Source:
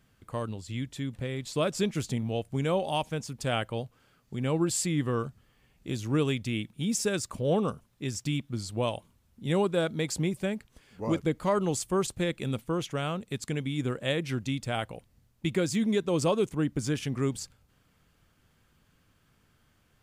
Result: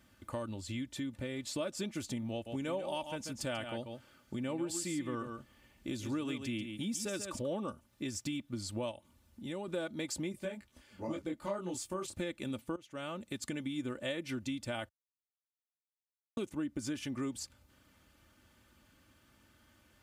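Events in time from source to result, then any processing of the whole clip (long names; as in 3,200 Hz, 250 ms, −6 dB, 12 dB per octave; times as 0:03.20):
0:02.32–0:07.48: single-tap delay 139 ms −9.5 dB
0:08.91–0:09.68: downward compressor 1.5 to 1, threshold −51 dBFS
0:10.32–0:12.14: micro pitch shift up and down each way 29 cents
0:12.76–0:13.62: fade in, from −21 dB
0:14.89–0:16.37: silence
whole clip: high-pass filter 57 Hz; comb filter 3.4 ms, depth 62%; downward compressor 3 to 1, threshold −39 dBFS; level +1 dB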